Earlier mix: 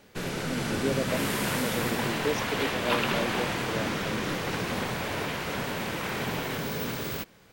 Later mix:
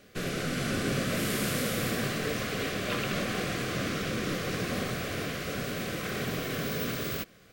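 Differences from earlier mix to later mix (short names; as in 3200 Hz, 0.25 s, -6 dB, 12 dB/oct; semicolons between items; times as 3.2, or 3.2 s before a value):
speech -8.5 dB; second sound -6.5 dB; master: add Butterworth band-stop 900 Hz, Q 3.5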